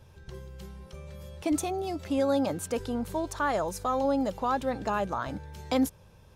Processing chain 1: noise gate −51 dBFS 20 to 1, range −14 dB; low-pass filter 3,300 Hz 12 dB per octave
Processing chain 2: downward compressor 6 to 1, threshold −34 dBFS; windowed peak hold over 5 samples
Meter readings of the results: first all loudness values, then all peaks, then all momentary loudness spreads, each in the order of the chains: −30.0, −39.0 LKFS; −16.5, −18.0 dBFS; 18, 9 LU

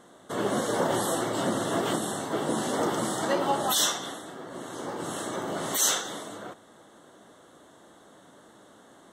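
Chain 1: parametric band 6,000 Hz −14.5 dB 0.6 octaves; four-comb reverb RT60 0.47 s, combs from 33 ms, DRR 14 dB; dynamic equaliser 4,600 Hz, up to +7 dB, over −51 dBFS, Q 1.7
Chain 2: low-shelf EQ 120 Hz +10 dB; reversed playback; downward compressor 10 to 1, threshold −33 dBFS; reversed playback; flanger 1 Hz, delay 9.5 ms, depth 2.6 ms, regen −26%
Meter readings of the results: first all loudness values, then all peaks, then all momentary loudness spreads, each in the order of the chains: −28.5, −40.5 LKFS; −11.5, −26.5 dBFS; 14, 19 LU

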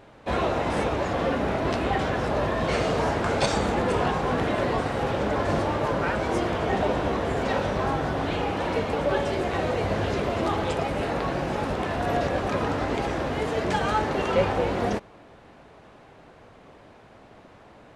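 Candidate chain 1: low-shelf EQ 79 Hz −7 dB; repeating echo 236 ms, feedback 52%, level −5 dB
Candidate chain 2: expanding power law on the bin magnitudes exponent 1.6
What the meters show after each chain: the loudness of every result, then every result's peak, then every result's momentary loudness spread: −25.0, −26.5 LKFS; −8.0, −10.5 dBFS; 3, 3 LU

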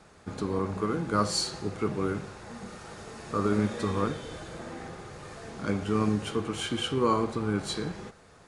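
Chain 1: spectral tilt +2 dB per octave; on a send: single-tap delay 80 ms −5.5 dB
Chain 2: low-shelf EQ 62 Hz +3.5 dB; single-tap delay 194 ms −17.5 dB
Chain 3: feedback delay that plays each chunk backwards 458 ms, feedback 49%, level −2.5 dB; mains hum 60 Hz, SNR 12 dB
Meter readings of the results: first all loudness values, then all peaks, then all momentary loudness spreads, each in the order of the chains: −30.0, −30.0, −28.5 LKFS; −9.0, −10.5, −10.5 dBFS; 16, 16, 9 LU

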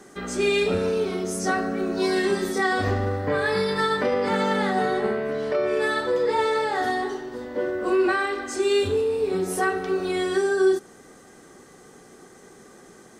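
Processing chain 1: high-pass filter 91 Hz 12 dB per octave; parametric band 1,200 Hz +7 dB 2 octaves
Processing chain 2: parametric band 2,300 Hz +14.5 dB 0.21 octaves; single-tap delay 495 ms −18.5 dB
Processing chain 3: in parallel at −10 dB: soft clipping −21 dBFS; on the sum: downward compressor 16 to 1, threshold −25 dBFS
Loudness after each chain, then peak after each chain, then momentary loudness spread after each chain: −20.5, −23.0, −29.0 LKFS; −7.0, −9.0, −18.0 dBFS; 6, 7, 18 LU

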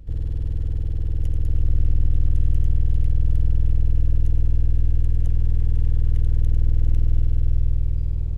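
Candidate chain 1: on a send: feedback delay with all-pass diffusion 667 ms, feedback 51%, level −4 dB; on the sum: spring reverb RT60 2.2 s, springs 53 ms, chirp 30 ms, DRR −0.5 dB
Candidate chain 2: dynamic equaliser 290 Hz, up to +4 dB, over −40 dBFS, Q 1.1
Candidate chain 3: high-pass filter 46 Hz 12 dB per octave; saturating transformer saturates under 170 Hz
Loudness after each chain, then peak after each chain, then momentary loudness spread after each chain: −21.0, −23.5, −28.5 LKFS; −4.0, −8.5, −12.5 dBFS; 5, 4, 2 LU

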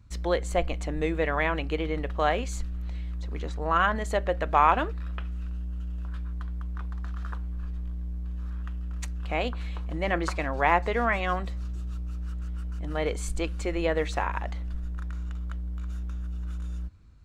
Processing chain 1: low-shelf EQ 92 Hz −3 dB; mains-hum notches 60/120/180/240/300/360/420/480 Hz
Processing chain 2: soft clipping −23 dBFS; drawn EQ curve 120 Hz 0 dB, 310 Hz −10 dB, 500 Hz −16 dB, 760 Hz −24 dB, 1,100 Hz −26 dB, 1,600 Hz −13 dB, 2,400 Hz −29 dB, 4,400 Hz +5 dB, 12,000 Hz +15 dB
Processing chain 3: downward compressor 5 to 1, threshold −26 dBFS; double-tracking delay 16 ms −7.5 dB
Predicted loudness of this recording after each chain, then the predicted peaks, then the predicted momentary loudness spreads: −28.5, −36.0, −31.5 LKFS; −7.5, −14.5, −14.0 dBFS; 21, 3, 4 LU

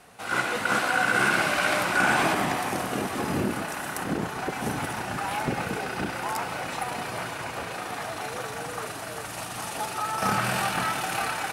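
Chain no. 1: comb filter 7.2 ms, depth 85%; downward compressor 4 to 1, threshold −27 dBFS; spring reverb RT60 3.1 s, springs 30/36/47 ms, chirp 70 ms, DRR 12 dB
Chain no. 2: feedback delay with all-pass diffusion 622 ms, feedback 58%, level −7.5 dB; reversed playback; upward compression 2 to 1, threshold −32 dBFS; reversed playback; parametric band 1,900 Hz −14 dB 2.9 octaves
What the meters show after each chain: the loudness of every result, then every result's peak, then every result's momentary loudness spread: −30.0, −33.5 LKFS; −15.5, −16.5 dBFS; 4, 9 LU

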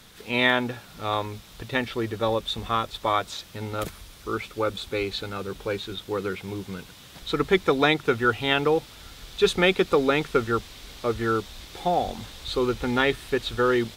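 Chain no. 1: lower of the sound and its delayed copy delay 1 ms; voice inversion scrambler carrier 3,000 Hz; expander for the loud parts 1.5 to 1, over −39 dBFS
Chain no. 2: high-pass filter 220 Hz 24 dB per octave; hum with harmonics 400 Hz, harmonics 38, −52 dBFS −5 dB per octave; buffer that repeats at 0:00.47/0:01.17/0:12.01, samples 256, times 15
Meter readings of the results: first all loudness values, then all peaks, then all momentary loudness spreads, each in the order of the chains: −29.5, −25.5 LKFS; −9.5, −5.0 dBFS; 19, 15 LU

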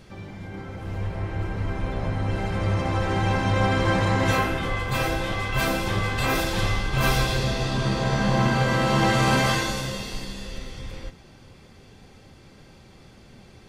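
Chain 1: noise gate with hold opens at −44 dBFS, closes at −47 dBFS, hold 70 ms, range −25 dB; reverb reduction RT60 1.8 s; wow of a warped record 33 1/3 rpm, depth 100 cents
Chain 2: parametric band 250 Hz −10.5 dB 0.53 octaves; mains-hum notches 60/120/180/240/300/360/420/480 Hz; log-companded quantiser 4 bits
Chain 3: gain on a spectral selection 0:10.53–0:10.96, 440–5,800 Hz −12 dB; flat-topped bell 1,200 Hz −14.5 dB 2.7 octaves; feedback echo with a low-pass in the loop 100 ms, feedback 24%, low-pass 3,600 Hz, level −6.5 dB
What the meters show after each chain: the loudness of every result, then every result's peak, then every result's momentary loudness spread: −27.5, −24.5, −26.0 LKFS; −12.0, −12.0, −10.5 dBFS; 16, 16, 15 LU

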